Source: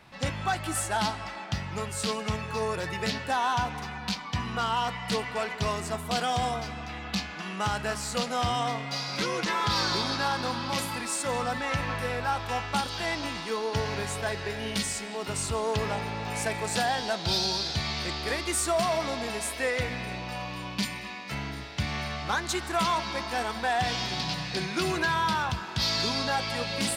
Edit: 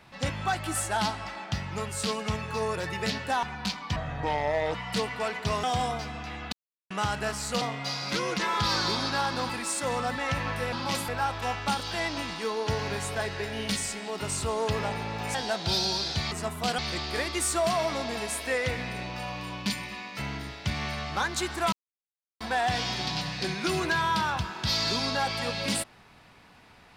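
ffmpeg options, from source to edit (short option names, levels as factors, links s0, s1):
-filter_complex "[0:a]asplit=16[s0][s1][s2][s3][s4][s5][s6][s7][s8][s9][s10][s11][s12][s13][s14][s15];[s0]atrim=end=3.432[s16];[s1]atrim=start=3.858:end=4.394[s17];[s2]atrim=start=4.39:end=4.9,asetpts=PTS-STARTPTS,asetrate=28665,aresample=44100[s18];[s3]atrim=start=4.896:end=5.792[s19];[s4]atrim=start=6.258:end=7.15,asetpts=PTS-STARTPTS,afade=t=out:st=0.888:d=0.004:c=hsin[s20];[s5]atrim=start=7.15:end=7.53,asetpts=PTS-STARTPTS,volume=0[s21];[s6]atrim=start=7.53:end=8.242,asetpts=PTS-STARTPTS,afade=t=in:d=0.004:c=hsin[s22];[s7]atrim=start=8.678:end=10.562[s23];[s8]atrim=start=10.918:end=12.152[s24];[s9]atrim=start=10.558:end=10.922[s25];[s10]atrim=start=12.148:end=16.412[s26];[s11]atrim=start=16.938:end=17.912[s27];[s12]atrim=start=5.788:end=6.262[s28];[s13]atrim=start=17.908:end=22.85,asetpts=PTS-STARTPTS,afade=t=out:st=4.938:d=0.004:c=hsin[s29];[s14]atrim=start=22.85:end=23.53,asetpts=PTS-STARTPTS,volume=0[s30];[s15]atrim=start=23.53,asetpts=PTS-STARTPTS,afade=t=in:d=0.004:c=hsin[s31];[s16][s17]acrossfade=d=0.004:c1=hsin:c2=hsin[s32];[s32][s18]acrossfade=d=0.004:c1=hsin:c2=hsin[s33];[s33][s19]acrossfade=d=0.004:c1=hsin:c2=hsin[s34];[s20][s21][s22]concat=n=3:v=0:a=1[s35];[s34][s35]acrossfade=d=0.004:c1=hsin:c2=hsin[s36];[s36][s23]acrossfade=d=0.004:c1=hsin:c2=hsin[s37];[s37][s24]acrossfade=d=0.004:c1=hsin:c2=hsin[s38];[s38][s25]acrossfade=d=0.004:c1=hsin:c2=hsin[s39];[s39][s26]acrossfade=d=0.004:c1=hsin:c2=hsin[s40];[s40][s27]acrossfade=d=0.004:c1=hsin:c2=hsin[s41];[s41][s28]acrossfade=d=0.004:c1=hsin:c2=hsin[s42];[s29][s30][s31]concat=n=3:v=0:a=1[s43];[s42][s43]acrossfade=d=0.004:c1=hsin:c2=hsin"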